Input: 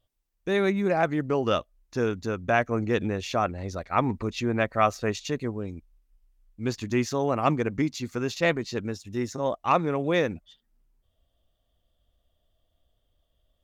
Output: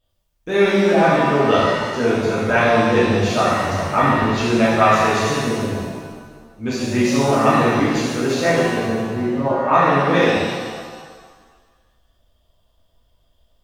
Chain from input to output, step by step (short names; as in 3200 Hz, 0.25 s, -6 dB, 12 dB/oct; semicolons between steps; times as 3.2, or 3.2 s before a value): 8.41–9.73 LPF 1900 Hz 24 dB/oct; shimmer reverb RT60 1.5 s, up +7 st, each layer -8 dB, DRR -9 dB